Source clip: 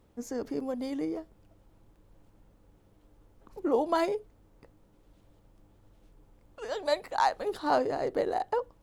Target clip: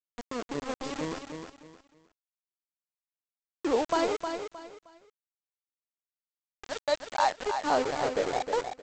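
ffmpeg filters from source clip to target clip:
-af "aeval=exprs='val(0)+0.000794*(sin(2*PI*60*n/s)+sin(2*PI*2*60*n/s)/2+sin(2*PI*3*60*n/s)/3+sin(2*PI*4*60*n/s)/4+sin(2*PI*5*60*n/s)/5)':c=same,aresample=16000,aeval=exprs='val(0)*gte(abs(val(0)),0.0282)':c=same,aresample=44100,aecho=1:1:311|622|933:0.447|0.125|0.035"

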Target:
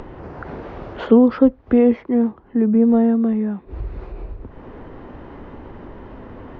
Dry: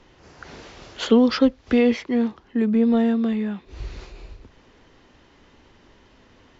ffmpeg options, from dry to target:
-af "lowpass=1100,acompressor=mode=upward:threshold=0.0447:ratio=2.5,volume=1.58"

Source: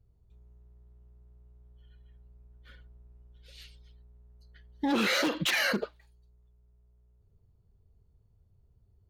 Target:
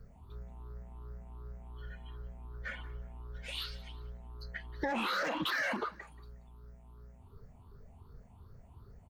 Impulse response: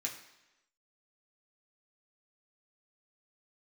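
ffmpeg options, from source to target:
-filter_complex "[0:a]afftfilt=real='re*pow(10,16/40*sin(2*PI*(0.58*log(max(b,1)*sr/1024/100)/log(2)-(2.7)*(pts-256)/sr)))':imag='im*pow(10,16/40*sin(2*PI*(0.58*log(max(b,1)*sr/1024/100)/log(2)-(2.7)*(pts-256)/sr)))':win_size=1024:overlap=0.75,aeval=exprs='val(0)+0.000447*(sin(2*PI*50*n/s)+sin(2*PI*2*50*n/s)/2+sin(2*PI*3*50*n/s)/3+sin(2*PI*4*50*n/s)/4+sin(2*PI*5*50*n/s)/5)':c=same,equalizer=f=1100:t=o:w=1.7:g=15,acontrast=73,alimiter=limit=0.2:level=0:latency=1:release=44,acompressor=threshold=0.0126:ratio=3,bandreject=f=50:t=h:w=6,bandreject=f=100:t=h:w=6,asplit=3[s0][s1][s2];[s1]adelay=181,afreqshift=-32,volume=0.1[s3];[s2]adelay=362,afreqshift=-64,volume=0.0299[s4];[s0][s3][s4]amix=inputs=3:normalize=0,volume=1.12"

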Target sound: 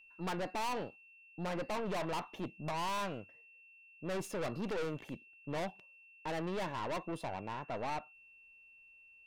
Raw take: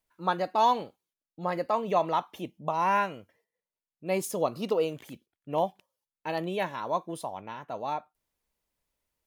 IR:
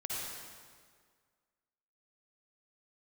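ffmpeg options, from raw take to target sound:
-af "aemphasis=mode=reproduction:type=75kf,aeval=exprs='(tanh(79.4*val(0)+0.55)-tanh(0.55))/79.4':c=same,aeval=exprs='val(0)+0.000891*sin(2*PI*2700*n/s)':c=same,volume=1.41"

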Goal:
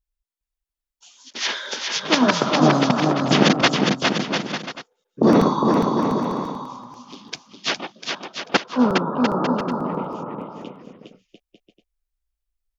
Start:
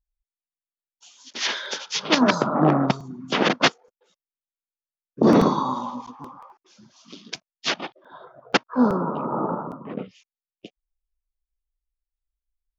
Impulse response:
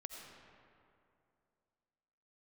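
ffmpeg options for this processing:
-filter_complex "[0:a]asettb=1/sr,asplit=3[s0][s1][s2];[s0]atrim=end=3.204[s3];[s1]atrim=start=3.2:end=3.62,asetpts=PTS-STARTPTS,afade=t=in:d=0.004:c=qsin,afade=t=out:st=0.416:d=0.004:c=qsin,bass=f=250:g=12,treble=f=4000:g=11[s4];[s2]atrim=start=3.616[s5];[s3][s4]acrossfade=d=0.004:c1=hsin:c2=qsin[s6];[s6][s5]acrossfade=d=0.004:c1=qsin:c2=hsin,aecho=1:1:410|697|897.9|1039|1137:0.631|0.398|0.251|0.158|0.1,volume=1.12"

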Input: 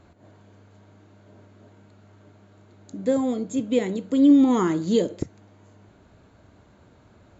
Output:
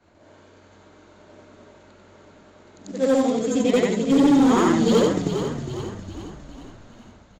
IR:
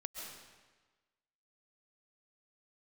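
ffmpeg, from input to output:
-filter_complex "[0:a]afftfilt=real='re':imag='-im':win_size=8192:overlap=0.75,equalizer=f=72:w=0.3:g=-9,dynaudnorm=f=130:g=5:m=2.82,aresample=16000,acrusher=bits=5:mode=log:mix=0:aa=0.000001,aresample=44100,volume=5.62,asoftclip=hard,volume=0.178,asplit=7[s0][s1][s2][s3][s4][s5][s6];[s1]adelay=408,afreqshift=-45,volume=0.376[s7];[s2]adelay=816,afreqshift=-90,volume=0.202[s8];[s3]adelay=1224,afreqshift=-135,volume=0.11[s9];[s4]adelay=1632,afreqshift=-180,volume=0.0589[s10];[s5]adelay=2040,afreqshift=-225,volume=0.032[s11];[s6]adelay=2448,afreqshift=-270,volume=0.0172[s12];[s0][s7][s8][s9][s10][s11][s12]amix=inputs=7:normalize=0,volume=1.33"

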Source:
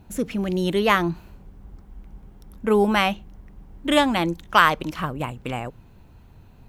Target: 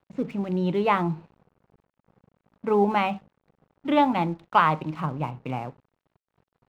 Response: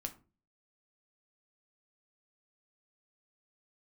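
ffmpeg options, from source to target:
-filter_complex "[0:a]highpass=f=100:w=0.5412,highpass=f=100:w=1.3066,equalizer=f=160:t=q:w=4:g=6,equalizer=f=870:t=q:w=4:g=7,equalizer=f=1700:t=q:w=4:g=-9,equalizer=f=3200:t=q:w=4:g=-8,lowpass=f=3600:w=0.5412,lowpass=f=3600:w=1.3066,asplit=2[s0][s1];[1:a]atrim=start_sample=2205,atrim=end_sample=6174[s2];[s1][s2]afir=irnorm=-1:irlink=0,volume=1[s3];[s0][s3]amix=inputs=2:normalize=0,aeval=exprs='sgn(val(0))*max(abs(val(0))-0.00891,0)':c=same,volume=0.376"

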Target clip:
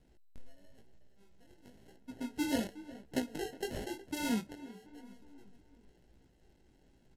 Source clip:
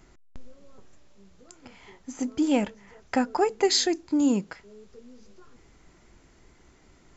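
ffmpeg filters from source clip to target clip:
-filter_complex "[0:a]asettb=1/sr,asplit=3[s0][s1][s2];[s0]atrim=end=3.184[s3];[s1]atrim=start=3.18:end=3.94,asetpts=PTS-STARTPTS,afade=t=in:d=0.004:c=qsin,afade=t=out:st=0.756:d=0.004:c=qsin,acompressor=threshold=0.0447:ratio=6[s4];[s2]atrim=start=3.936[s5];[s3][s4]acrossfade=d=0.004:c1=hsin:c2=qsin[s6];[s6][s5]acrossfade=d=0.004:c1=qsin:c2=hsin,asettb=1/sr,asplit=3[s7][s8][s9];[s7]atrim=end=4.454[s10];[s8]atrim=start=4.45:end=4.87,asetpts=PTS-STARTPTS,afade=t=in:d=0.004:c=qsin,afade=t=out:st=0.416:d=0.004:c=qsin,highpass=120,lowpass=3800[s11];[s9]atrim=start=4.866[s12];[s10][s11]acrossfade=d=0.004:c1=hsin:c2=qsin[s13];[s13][s12]acrossfade=d=0.004:c1=qsin:c2=hsin,acrusher=samples=37:mix=1:aa=0.000001,equalizer=f=1100:w=1.3:g=-7.5,asplit=2[s14][s15];[s15]adelay=365,lowpass=f=2200:p=1,volume=0.141,asplit=2[s16][s17];[s17]adelay=365,lowpass=f=2200:p=1,volume=0.51,asplit=2[s18][s19];[s19]adelay=365,lowpass=f=2200:p=1,volume=0.51,asplit=2[s20][s21];[s21]adelay=365,lowpass=f=2200:p=1,volume=0.51[s22];[s16][s18][s20][s22]amix=inputs=4:normalize=0[s23];[s14][s23]amix=inputs=2:normalize=0,flanger=delay=15:depth=7.1:speed=0.97,asettb=1/sr,asplit=3[s24][s25][s26];[s24]atrim=end=1.964[s27];[s25]atrim=start=1.96:end=2.36,asetpts=PTS-STARTPTS,afade=t=in:d=0.004:c=qsin,afade=t=out:st=0.396:d=0.004:c=qsin,highshelf=f=2300:g=-6.5[s28];[s26]atrim=start=2.356[s29];[s27][s28]acrossfade=d=0.004:c1=hsin:c2=qsin[s30];[s30][s29]acrossfade=d=0.004:c1=qsin:c2=hsin,volume=0.531" -ar 32000 -c:a sbc -b:a 128k

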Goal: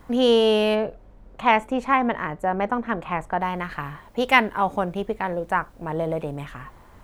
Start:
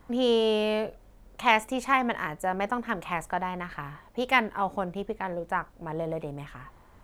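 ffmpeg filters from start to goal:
-filter_complex "[0:a]asplit=3[s0][s1][s2];[s0]afade=t=out:st=0.74:d=0.02[s3];[s1]lowpass=f=1400:p=1,afade=t=in:st=0.74:d=0.02,afade=t=out:st=3.4:d=0.02[s4];[s2]afade=t=in:st=3.4:d=0.02[s5];[s3][s4][s5]amix=inputs=3:normalize=0,volume=2"

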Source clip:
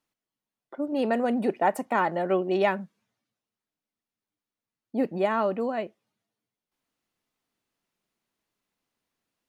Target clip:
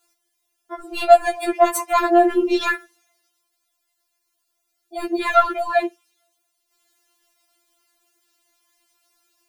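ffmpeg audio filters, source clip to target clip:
-af "bass=f=250:g=-14,treble=f=4000:g=7,apsyclip=17.8,afftfilt=real='re*4*eq(mod(b,16),0)':imag='im*4*eq(mod(b,16),0)':win_size=2048:overlap=0.75,volume=0.355"

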